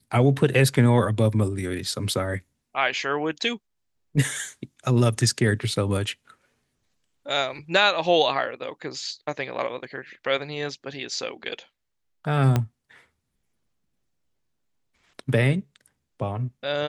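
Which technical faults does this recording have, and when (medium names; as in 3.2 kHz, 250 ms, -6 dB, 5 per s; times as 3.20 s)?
12.56 s: pop -9 dBFS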